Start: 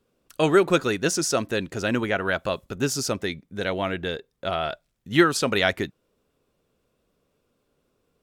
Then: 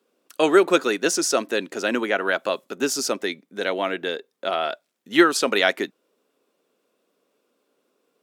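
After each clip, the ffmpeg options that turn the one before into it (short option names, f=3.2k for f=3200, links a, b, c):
-af "highpass=f=250:w=0.5412,highpass=f=250:w=1.3066,volume=2.5dB"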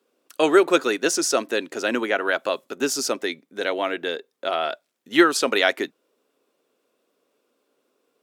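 -af "equalizer=f=190:w=7.3:g=-10.5"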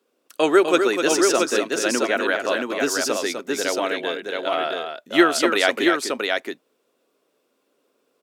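-af "aecho=1:1:251|674:0.447|0.631"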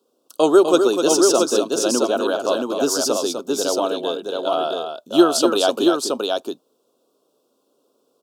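-af "asuperstop=centerf=2000:order=4:qfactor=0.94,volume=3.5dB"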